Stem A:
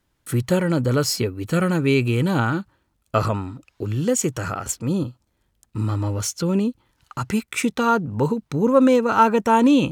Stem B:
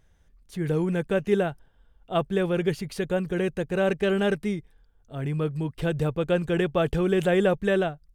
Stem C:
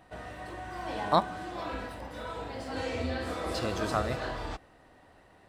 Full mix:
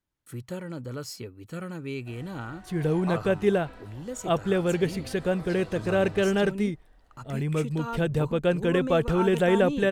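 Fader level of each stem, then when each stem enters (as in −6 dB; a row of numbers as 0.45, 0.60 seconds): −16.0, 0.0, −10.5 decibels; 0.00, 2.15, 1.95 seconds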